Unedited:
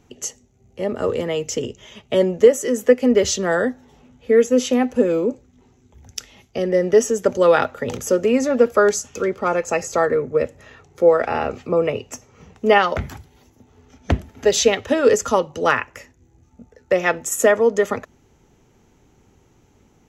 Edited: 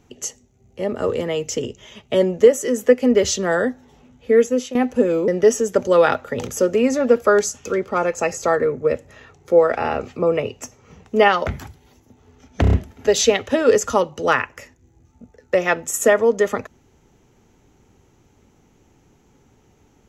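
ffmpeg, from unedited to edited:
-filter_complex "[0:a]asplit=7[a][b][c][d][e][f][g];[a]atrim=end=4.75,asetpts=PTS-STARTPTS,afade=t=out:st=4.41:d=0.34:silence=0.199526[h];[b]atrim=start=4.75:end=5.282,asetpts=PTS-STARTPTS,afade=t=in:d=0.004:c=hsin:silence=0.199526[i];[c]atrim=start=6.778:end=14.142[j];[d]atrim=start=14.108:end=14.142[k];[e]atrim=start=14.108:end=14.142[l];[f]atrim=start=14.108:end=14.142[m];[g]atrim=start=14.108[n];[h][i]concat=n=2:v=0:a=1[o];[o][j]acrossfade=d=0.004:c1=hsin:c2=hsin[p];[p][k]acrossfade=d=0.004:c1=hsin:c2=hsin[q];[q][l]acrossfade=d=0.004:c1=hsin:c2=hsin[r];[r][m]acrossfade=d=0.004:c1=hsin:c2=hsin[s];[s][n]acrossfade=d=0.004:c1=hsin:c2=hsin"

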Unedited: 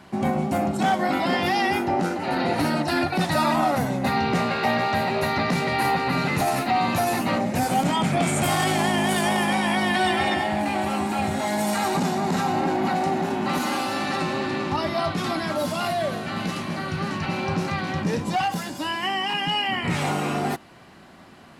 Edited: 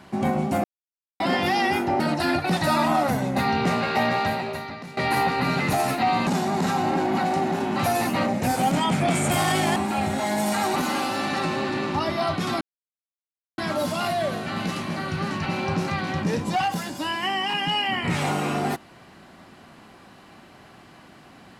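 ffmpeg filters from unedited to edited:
-filter_complex "[0:a]asplit=10[a][b][c][d][e][f][g][h][i][j];[a]atrim=end=0.64,asetpts=PTS-STARTPTS,afade=t=out:st=0.636:d=0.004:c=hsin[k];[b]atrim=start=0.64:end=1.2,asetpts=PTS-STARTPTS,volume=0[l];[c]atrim=start=1.2:end=2.002,asetpts=PTS-STARTPTS,afade=t=in:d=0.004:c=hsin[m];[d]atrim=start=2.678:end=5.65,asetpts=PTS-STARTPTS,afade=t=out:st=2.222:d=0.75:c=qua:silence=0.149624[n];[e]atrim=start=5.65:end=6.952,asetpts=PTS-STARTPTS,afade=t=in:d=0.004:c=hsin:silence=0.149624[o];[f]atrim=start=11.968:end=13.532[p];[g]atrim=start=6.948:end=8.882[q];[h]atrim=start=10.968:end=11.972[r];[i]atrim=start=13.528:end=15.38,asetpts=PTS-STARTPTS,afade=t=out:st=1.848:d=0.004:c=hsin,apad=pad_dur=0.97[s];[j]atrim=start=15.38,asetpts=PTS-STARTPTS,afade=t=in:d=0.004:c=hsin[t];[k][l][m]concat=n=3:v=0:a=1[u];[n][o]concat=n=2:v=0:a=1[v];[u][v]acrossfade=d=0.004:c1=hsin:c2=hsin[w];[w][p]acrossfade=d=0.004:c1=hsin:c2=hsin[x];[x][q]acrossfade=d=0.004:c1=hsin:c2=hsin[y];[y][r]acrossfade=d=0.004:c1=hsin:c2=hsin[z];[s][t]concat=n=2:v=0:a=1[aa];[z][aa]acrossfade=d=0.004:c1=hsin:c2=hsin"

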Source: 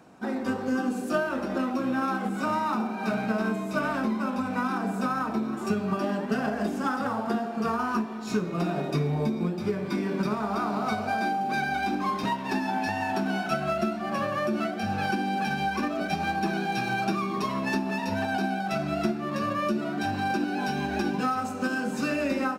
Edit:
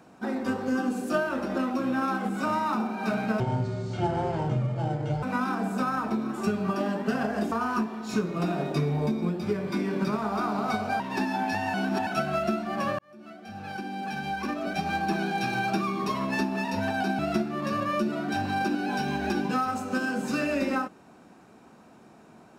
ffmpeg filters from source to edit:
-filter_complex "[0:a]asplit=9[a][b][c][d][e][f][g][h][i];[a]atrim=end=3.404[j];[b]atrim=start=3.4:end=4.46,asetpts=PTS-STARTPTS,asetrate=25578,aresample=44100[k];[c]atrim=start=4.456:end=6.752[l];[d]atrim=start=7.698:end=11.182[m];[e]atrim=start=12.338:end=13.082[n];[f]atrim=start=13.078:end=13.412,asetpts=PTS-STARTPTS,areverse[o];[g]atrim=start=13.408:end=14.33,asetpts=PTS-STARTPTS,afade=t=out:st=0.918:d=0.004:c=hsin[p];[h]atrim=start=14.33:end=18.532,asetpts=PTS-STARTPTS,afade=t=in:d=2.05[q];[i]atrim=start=18.878[r];[j][k]acrossfade=d=0.004:c1=hsin:c2=hsin[s];[s][l]acrossfade=d=0.004:c1=hsin:c2=hsin[t];[t][m]acrossfade=d=0.004:c1=hsin:c2=hsin[u];[u][n]acrossfade=d=0.004:c1=hsin:c2=hsin[v];[v][o]acrossfade=d=0.004:c1=hsin:c2=hsin[w];[p][q]concat=n=2:v=0:a=1[x];[w][x]acrossfade=d=0.004:c1=hsin:c2=hsin[y];[y][r]acrossfade=d=0.004:c1=hsin:c2=hsin"

